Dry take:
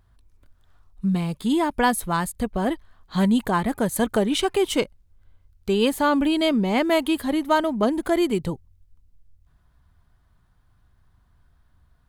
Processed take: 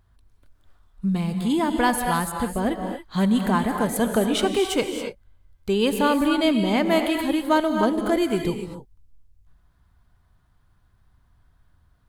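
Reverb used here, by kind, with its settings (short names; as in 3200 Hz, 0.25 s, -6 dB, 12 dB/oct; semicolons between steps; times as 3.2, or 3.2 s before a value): non-linear reverb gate 0.3 s rising, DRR 4.5 dB; gain -1 dB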